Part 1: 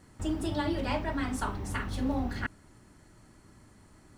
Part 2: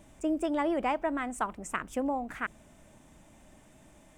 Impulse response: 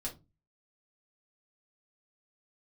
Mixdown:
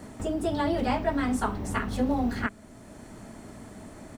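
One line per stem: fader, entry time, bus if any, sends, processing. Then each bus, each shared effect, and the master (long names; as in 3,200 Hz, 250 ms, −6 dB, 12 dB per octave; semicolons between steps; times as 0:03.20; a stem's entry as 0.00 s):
+2.0 dB, 0.00 s, no send, high-shelf EQ 9,000 Hz +3.5 dB; automatic gain control gain up to 6.5 dB; automatic ducking −8 dB, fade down 0.35 s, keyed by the second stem
−1.5 dB, 23 ms, no send, elliptic high-pass filter 190 Hz; notch filter 2,800 Hz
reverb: not used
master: hollow resonant body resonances 230/440/670 Hz, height 6 dB, ringing for 30 ms; multiband upward and downward compressor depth 40%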